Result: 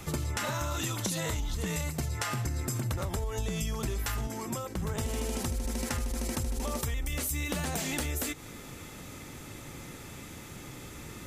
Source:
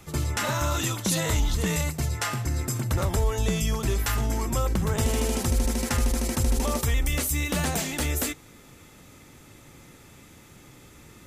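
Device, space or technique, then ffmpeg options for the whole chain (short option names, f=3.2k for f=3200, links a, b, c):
serial compression, peaks first: -filter_complex "[0:a]acompressor=threshold=-31dB:ratio=6,acompressor=threshold=-36dB:ratio=2.5,asettb=1/sr,asplit=3[a][b][c];[a]atrim=end=4.274[d];[b]atrim=start=4.27:end=4.76,asetpts=PTS-STARTPTS,afade=t=in:d=0.004:c=qsin,afade=t=out:st=0.486:d=0.004:c=qsin,highpass=f=110:w=0.5412,highpass=f=110:w=1.3066[e];[c]atrim=start=4.756[f];[d][e]acrossfade=d=0.004:c1=hsin:c2=qsin[g];[g][f]acrossfade=d=0.004:c1=qsin:c2=hsin,volume=5.5dB"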